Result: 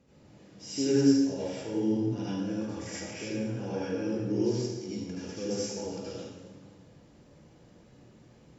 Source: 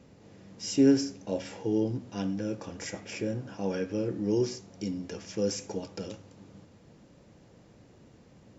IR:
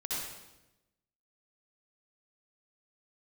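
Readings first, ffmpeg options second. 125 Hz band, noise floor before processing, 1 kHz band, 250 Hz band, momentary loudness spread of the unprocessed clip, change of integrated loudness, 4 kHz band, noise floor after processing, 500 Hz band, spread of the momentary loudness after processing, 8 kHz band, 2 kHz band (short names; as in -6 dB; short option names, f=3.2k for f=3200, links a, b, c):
+1.0 dB, -57 dBFS, 0.0 dB, +0.5 dB, 15 LU, 0.0 dB, +0.5 dB, -57 dBFS, -0.5 dB, 15 LU, n/a, -0.5 dB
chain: -filter_complex "[1:a]atrim=start_sample=2205,asetrate=36162,aresample=44100[a];[0:a][a]afir=irnorm=-1:irlink=0,volume=-5.5dB"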